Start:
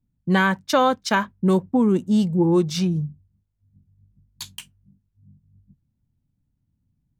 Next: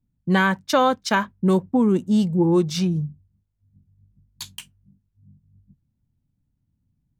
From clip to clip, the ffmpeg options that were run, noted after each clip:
-af anull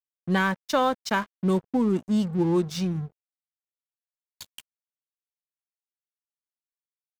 -af "aeval=exprs='sgn(val(0))*max(abs(val(0))-0.015,0)':c=same,volume=0.631"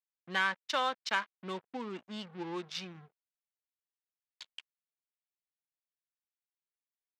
-af "adynamicsmooth=sensitivity=5.5:basefreq=2800,bandpass=f=3000:t=q:w=0.76:csg=0"

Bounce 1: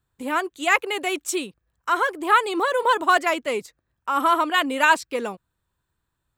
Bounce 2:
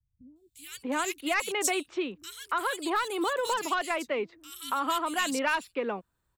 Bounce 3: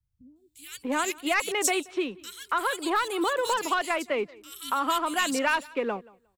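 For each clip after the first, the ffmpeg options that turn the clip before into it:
-filter_complex "[0:a]acrossover=split=150|3200[s0][s1][s2];[s2]adelay=360[s3];[s1]adelay=640[s4];[s0][s4][s3]amix=inputs=3:normalize=0,asoftclip=type=tanh:threshold=0.398,acrossover=split=180|3000[s5][s6][s7];[s6]acompressor=threshold=0.0447:ratio=6[s8];[s5][s8][s7]amix=inputs=3:normalize=0"
-filter_complex "[0:a]asplit=2[s0][s1];[s1]aeval=exprs='sgn(val(0))*max(abs(val(0))-0.00708,0)':c=same,volume=0.398[s2];[s0][s2]amix=inputs=2:normalize=0,aecho=1:1:179|358:0.0668|0.0114"

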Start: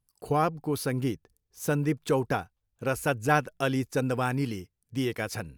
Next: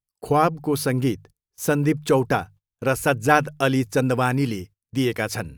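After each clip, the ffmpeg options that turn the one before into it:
-af "bandreject=f=50:t=h:w=6,bandreject=f=100:t=h:w=6,bandreject=f=150:t=h:w=6,agate=range=0.0891:threshold=0.00316:ratio=16:detection=peak,volume=2.24"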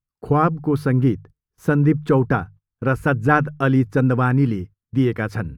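-af "firequalizer=gain_entry='entry(160,0);entry(640,-10);entry(1300,-3);entry(2400,-13);entry(6300,-23)':delay=0.05:min_phase=1,volume=2.11"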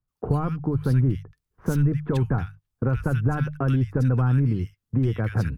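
-filter_complex "[0:a]apsyclip=4.47,acrossover=split=120[s0][s1];[s1]acompressor=threshold=0.141:ratio=10[s2];[s0][s2]amix=inputs=2:normalize=0,acrossover=split=1700[s3][s4];[s4]adelay=80[s5];[s3][s5]amix=inputs=2:normalize=0,volume=0.422"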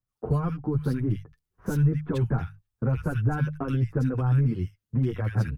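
-filter_complex "[0:a]asplit=2[s0][s1];[s1]adelay=7.8,afreqshift=1.9[s2];[s0][s2]amix=inputs=2:normalize=1"

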